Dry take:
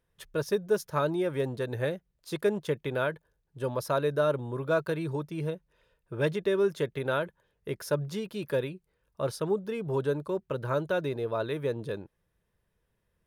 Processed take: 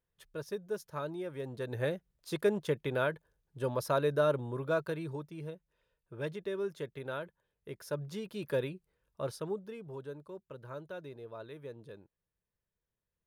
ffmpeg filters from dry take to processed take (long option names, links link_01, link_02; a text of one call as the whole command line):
ffmpeg -i in.wav -af "volume=5.5dB,afade=type=in:start_time=1.42:duration=0.5:silence=0.375837,afade=type=out:start_time=4.28:duration=1.12:silence=0.398107,afade=type=in:start_time=7.78:duration=0.92:silence=0.421697,afade=type=out:start_time=8.7:duration=1.26:silence=0.237137" out.wav